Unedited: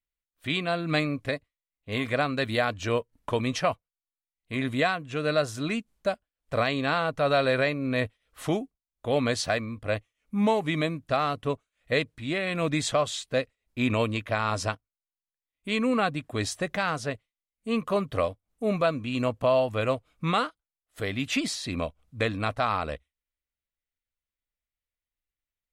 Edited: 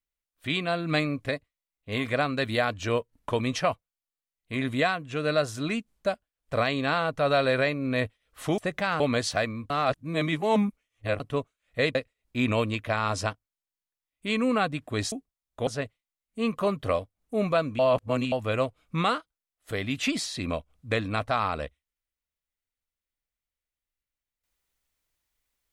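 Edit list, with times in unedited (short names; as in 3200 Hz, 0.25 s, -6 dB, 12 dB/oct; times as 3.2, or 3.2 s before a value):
8.58–9.13 swap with 16.54–16.96
9.83–11.33 reverse
12.08–13.37 cut
19.08–19.61 reverse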